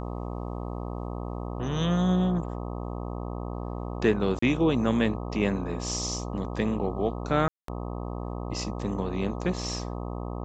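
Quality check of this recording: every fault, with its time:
buzz 60 Hz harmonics 21 -34 dBFS
4.39–4.42 s: dropout 34 ms
7.48–7.68 s: dropout 203 ms

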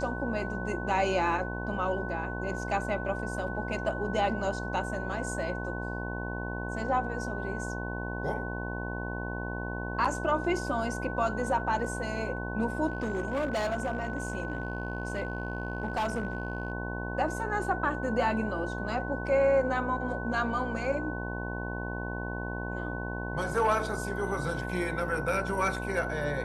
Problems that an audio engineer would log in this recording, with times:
buzz 60 Hz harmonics 18 -36 dBFS
whine 1.5 kHz -38 dBFS
12.87–16.72 s: clipped -26 dBFS

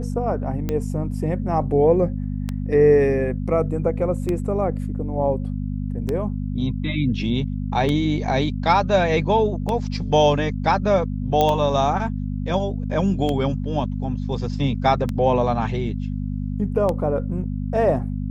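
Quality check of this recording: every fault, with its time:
hum 50 Hz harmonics 5 -26 dBFS
tick 33 1/3 rpm -12 dBFS
11.41 s: pop -7 dBFS

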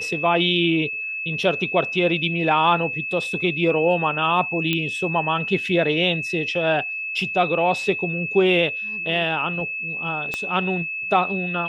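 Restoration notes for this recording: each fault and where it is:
whine 2.6 kHz -26 dBFS
4.73 s: pop -9 dBFS
10.34 s: pop -12 dBFS

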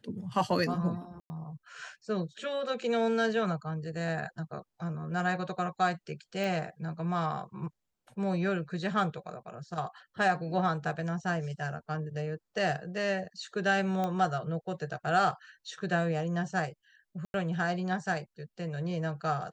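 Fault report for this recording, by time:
1.20–1.30 s: dropout 100 ms
6.44 s: pop
14.04 s: pop -20 dBFS
17.25–17.34 s: dropout 91 ms

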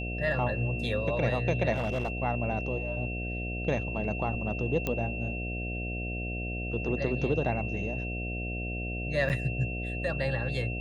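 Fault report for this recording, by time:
buzz 60 Hz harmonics 12 -35 dBFS
whine 2.7 kHz -37 dBFS
1.73–2.12 s: clipped -25.5 dBFS
4.87 s: pop -16 dBFS
9.29–9.30 s: dropout 8.4 ms

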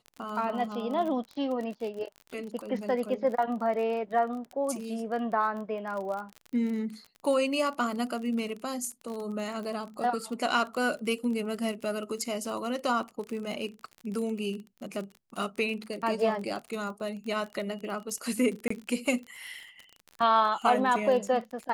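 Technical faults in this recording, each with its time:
crackle 36 per s -35 dBFS
18.68–18.70 s: dropout 24 ms

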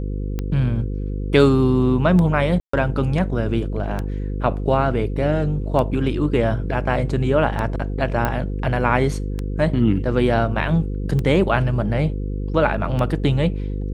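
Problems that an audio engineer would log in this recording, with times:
buzz 50 Hz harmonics 10 -25 dBFS
tick 33 1/3 rpm -13 dBFS
2.60–2.73 s: dropout 134 ms
8.25 s: pop -8 dBFS

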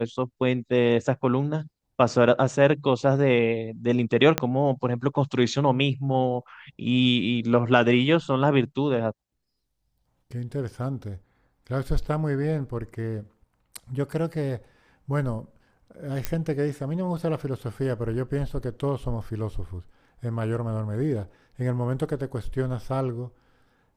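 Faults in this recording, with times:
4.38 s: pop -6 dBFS
16.25 s: pop -11 dBFS

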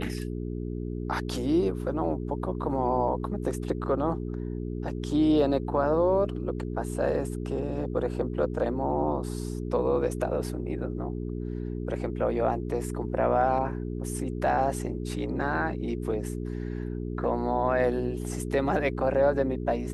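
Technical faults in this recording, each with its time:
hum 60 Hz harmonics 7 -33 dBFS

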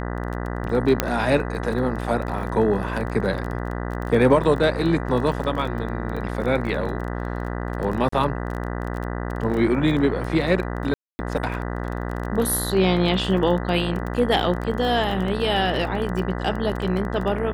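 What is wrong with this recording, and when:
buzz 60 Hz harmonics 33 -28 dBFS
crackle 19 per s -28 dBFS
1.00 s: pop -3 dBFS
8.09–8.12 s: dropout 34 ms
10.94–11.19 s: dropout 250 ms

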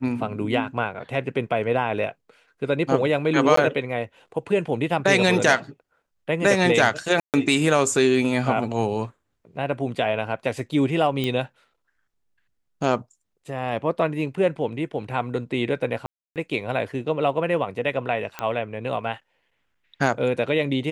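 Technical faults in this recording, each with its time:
3.56–3.57 s: dropout 14 ms
7.20–7.34 s: dropout 138 ms
11.24 s: pop -13 dBFS
16.06–16.36 s: dropout 298 ms
18.39 s: pop -13 dBFS

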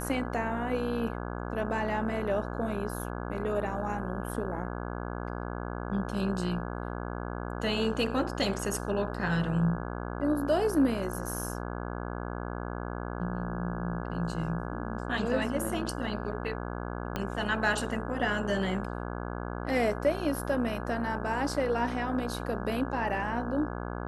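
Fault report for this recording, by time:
buzz 60 Hz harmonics 28 -36 dBFS
17.16 s: pop -17 dBFS

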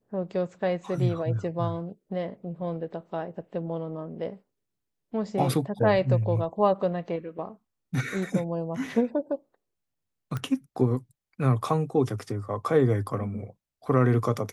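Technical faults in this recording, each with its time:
10.37 s: pop -19 dBFS

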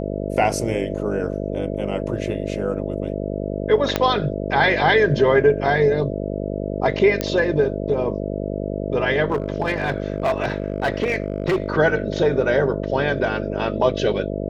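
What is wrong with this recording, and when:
buzz 50 Hz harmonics 13 -26 dBFS
3.96 s: pop -4 dBFS
7.21 s: pop -7 dBFS
9.30–11.70 s: clipped -15.5 dBFS

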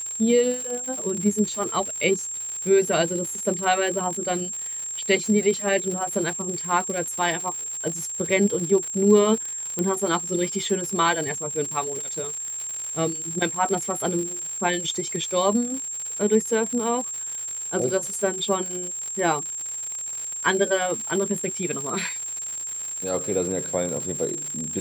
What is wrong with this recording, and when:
crackle 170 per s -29 dBFS
whine 7.5 kHz -29 dBFS
9.79 s: pop -12 dBFS

